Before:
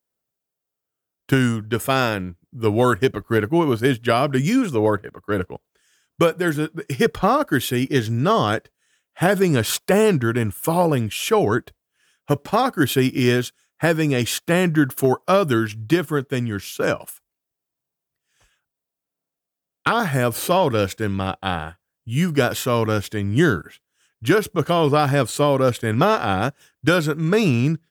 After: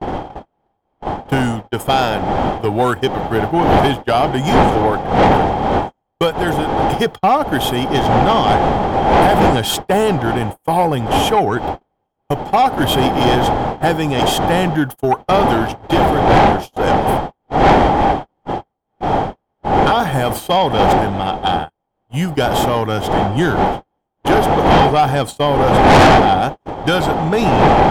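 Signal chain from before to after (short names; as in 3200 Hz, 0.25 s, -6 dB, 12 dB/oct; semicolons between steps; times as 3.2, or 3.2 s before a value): wind noise 590 Hz -16 dBFS; gate -24 dBFS, range -40 dB; small resonant body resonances 800/3200 Hz, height 13 dB, ringing for 25 ms; soft clip -7 dBFS, distortion -6 dB; gain +1.5 dB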